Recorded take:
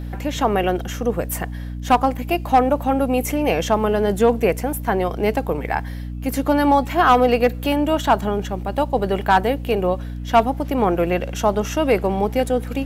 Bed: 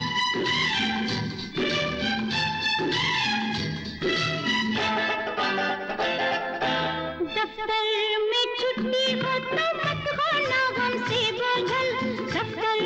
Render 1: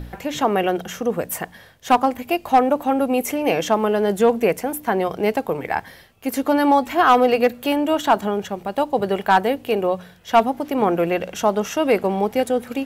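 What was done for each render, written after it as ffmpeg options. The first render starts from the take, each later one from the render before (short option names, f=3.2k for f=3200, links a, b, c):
-af "bandreject=f=60:t=h:w=4,bandreject=f=120:t=h:w=4,bandreject=f=180:t=h:w=4,bandreject=f=240:t=h:w=4,bandreject=f=300:t=h:w=4"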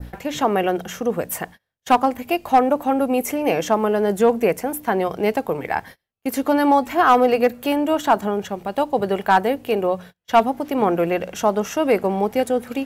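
-af "agate=range=-33dB:threshold=-36dB:ratio=16:detection=peak,adynamicequalizer=threshold=0.01:dfrequency=3400:dqfactor=1.5:tfrequency=3400:tqfactor=1.5:attack=5:release=100:ratio=0.375:range=2.5:mode=cutabove:tftype=bell"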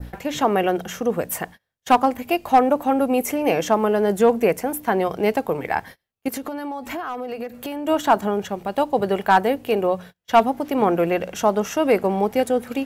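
-filter_complex "[0:a]asettb=1/sr,asplit=3[a][b][c];[a]atrim=end=6.284[d];[b]atrim=start=6.28:end=7.87,asetpts=PTS-STARTPTS,afade=t=in:d=0.004:c=qsin,afade=t=out:st=1.586:d=0.004:c=qsin,acompressor=threshold=-25dB:ratio=20:attack=3.2:release=140:knee=1:detection=peak[e];[c]atrim=start=7.866[f];[d][e]acrossfade=d=0.004:c1=hsin:c2=qsin[g];[g][f]acrossfade=d=0.004:c1=qsin:c2=hsin"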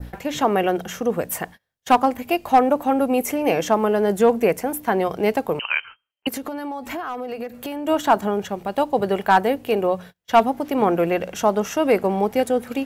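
-filter_complex "[0:a]asettb=1/sr,asplit=3[a][b][c];[a]atrim=end=5.594[d];[b]atrim=start=5.59:end=6.27,asetpts=PTS-STARTPTS,afade=t=in:d=0.004:c=qsin,afade=t=out:st=0.676:d=0.004:c=qsin,lowpass=f=2.7k:t=q:w=0.5098,lowpass=f=2.7k:t=q:w=0.6013,lowpass=f=2.7k:t=q:w=0.9,lowpass=f=2.7k:t=q:w=2.563,afreqshift=-3200[e];[c]atrim=start=6.266[f];[d][e]acrossfade=d=0.004:c1=hsin:c2=qsin[g];[g][f]acrossfade=d=0.004:c1=qsin:c2=hsin"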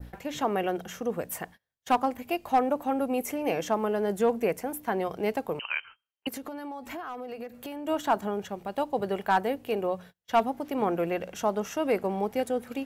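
-af "volume=-8.5dB"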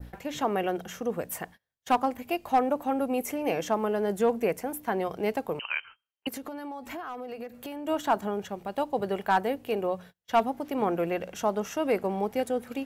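-af anull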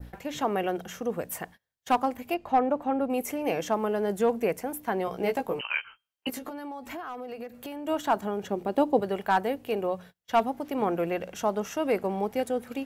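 -filter_complex "[0:a]asettb=1/sr,asplit=3[a][b][c];[a]atrim=end=2.344[d];[b]atrim=start=2.34:end=3.1,asetpts=PTS-STARTPTS,afade=t=in:d=0.004:c=qsin,afade=t=out:st=0.756:d=0.004:c=qsin,aemphasis=mode=reproduction:type=75fm[e];[c]atrim=start=3.096[f];[d][e]acrossfade=d=0.004:c1=hsin:c2=qsin[g];[g][f]acrossfade=d=0.004:c1=qsin:c2=hsin,asettb=1/sr,asplit=3[h][i][j];[h]atrim=end=5.064[k];[i]atrim=start=5.06:end=6.51,asetpts=PTS-STARTPTS,afade=t=in:d=0.004:c=qsin,afade=t=out:st=1.446:d=0.004:c=qsin,asplit=2[l][m];[m]adelay=16,volume=-4dB[n];[l][n]amix=inputs=2:normalize=0,atrim=end_sample=63945[o];[j]atrim=start=6.506[p];[k][o]acrossfade=d=0.004:c1=hsin:c2=qsin[q];[q][p]acrossfade=d=0.004:c1=qsin:c2=hsin,asettb=1/sr,asplit=3[r][s][t];[r]atrim=end=8.434[u];[s]atrim=start=8.43:end=9,asetpts=PTS-STARTPTS,afade=t=in:d=0.004:c=qsin,afade=t=out:st=0.566:d=0.004:c=qsin,equalizer=f=330:t=o:w=1.5:g=11[v];[t]atrim=start=8.996[w];[u][v]acrossfade=d=0.004:c1=hsin:c2=qsin[x];[x][w]acrossfade=d=0.004:c1=qsin:c2=hsin"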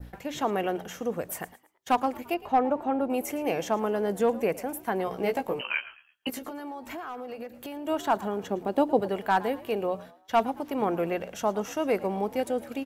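-filter_complex "[0:a]asplit=4[a][b][c][d];[b]adelay=111,afreqshift=68,volume=-18.5dB[e];[c]adelay=222,afreqshift=136,volume=-27.1dB[f];[d]adelay=333,afreqshift=204,volume=-35.8dB[g];[a][e][f][g]amix=inputs=4:normalize=0"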